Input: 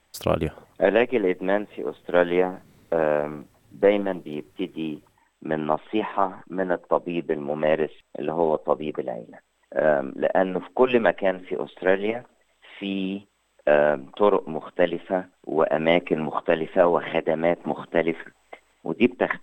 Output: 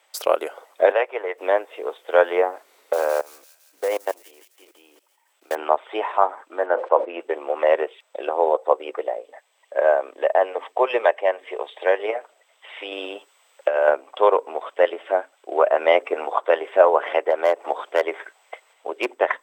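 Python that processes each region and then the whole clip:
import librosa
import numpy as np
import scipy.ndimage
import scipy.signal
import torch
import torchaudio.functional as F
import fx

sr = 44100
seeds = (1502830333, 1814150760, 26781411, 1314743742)

y = fx.chain(x, sr, fx.highpass(hz=610.0, slope=12),
    fx.high_shelf(hz=4400.0, db=-12.0), at=(0.92, 1.38))
y = fx.chain(y, sr, fx.block_float(bits=5),
    fx.level_steps(step_db=24),
    fx.echo_wet_highpass(ms=169, feedback_pct=62, hz=5000.0, wet_db=-8.0), at=(2.93, 5.56))
y = fx.chain(y, sr, fx.lowpass(hz=2700.0, slope=12),
    fx.sustainer(db_per_s=130.0), at=(6.66, 7.2))
y = fx.chain(y, sr, fx.highpass(hz=390.0, slope=6),
    fx.notch(hz=1400.0, q=5.8), at=(9.21, 11.99))
y = fx.chain(y, sr, fx.highpass(hz=60.0, slope=12),
    fx.high_shelf(hz=4700.0, db=4.0),
    fx.over_compress(threshold_db=-20.0, ratio=-0.5), at=(12.92, 13.89))
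y = fx.chain(y, sr, fx.highpass(hz=240.0, slope=12),
    fx.clip_hard(threshold_db=-12.5), at=(17.3, 19.11))
y = scipy.signal.sosfilt(scipy.signal.cheby2(4, 50, 180.0, 'highpass', fs=sr, output='sos'), y)
y = fx.notch(y, sr, hz=1700.0, q=20.0)
y = fx.dynamic_eq(y, sr, hz=3000.0, q=1.1, threshold_db=-42.0, ratio=4.0, max_db=-6)
y = F.gain(torch.from_numpy(y), 5.5).numpy()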